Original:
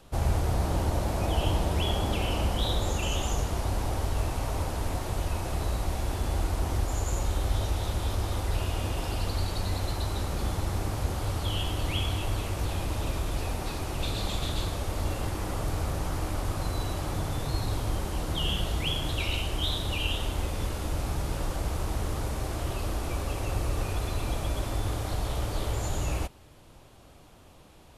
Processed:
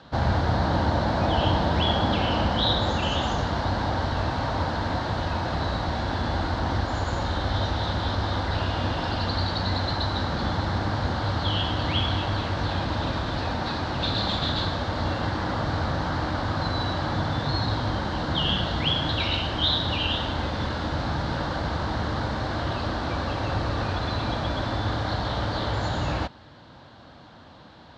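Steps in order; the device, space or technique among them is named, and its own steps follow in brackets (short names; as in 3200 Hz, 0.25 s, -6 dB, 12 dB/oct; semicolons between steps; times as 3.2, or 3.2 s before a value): guitar cabinet (speaker cabinet 96–4500 Hz, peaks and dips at 240 Hz +3 dB, 400 Hz -7 dB, 920 Hz +3 dB, 1600 Hz +7 dB, 2500 Hz -8 dB, 4100 Hz +6 dB); gain +7 dB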